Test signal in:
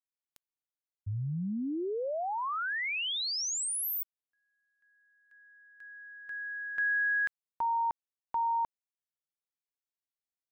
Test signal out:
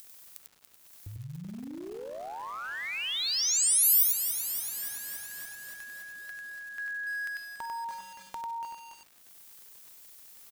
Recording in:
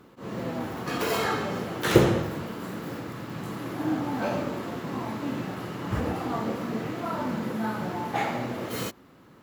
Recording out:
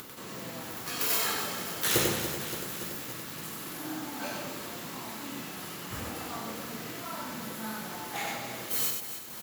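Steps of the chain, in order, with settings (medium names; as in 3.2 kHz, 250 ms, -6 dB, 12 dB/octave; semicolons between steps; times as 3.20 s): pre-emphasis filter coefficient 0.9; upward compressor 4:1, threshold -45 dBFS; crackle 170 per s -52 dBFS; delay 96 ms -3.5 dB; bit-crushed delay 285 ms, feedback 80%, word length 8-bit, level -9 dB; trim +6.5 dB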